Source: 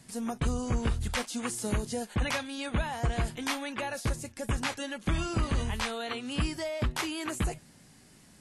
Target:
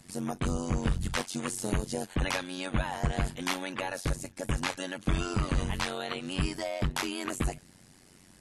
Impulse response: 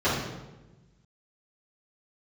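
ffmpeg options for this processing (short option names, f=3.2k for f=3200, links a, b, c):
-af "tremolo=f=92:d=0.947,volume=4dB"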